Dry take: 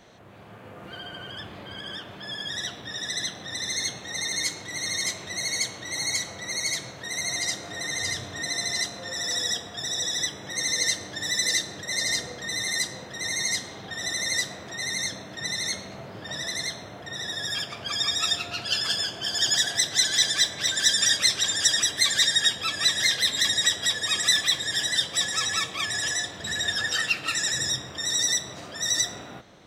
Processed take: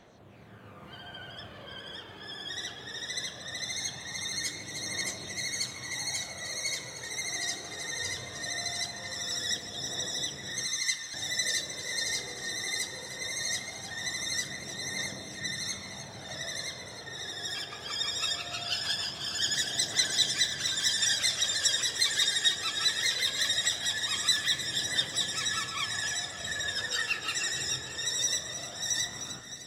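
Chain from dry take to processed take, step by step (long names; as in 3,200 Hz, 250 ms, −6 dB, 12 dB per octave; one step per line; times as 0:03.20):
0:10.66–0:11.14: elliptic high-pass filter 1,100 Hz
delay that swaps between a low-pass and a high-pass 153 ms, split 1,900 Hz, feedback 78%, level −8 dB
phase shifter 0.2 Hz, delay 2.7 ms, feedback 37%
level −6.5 dB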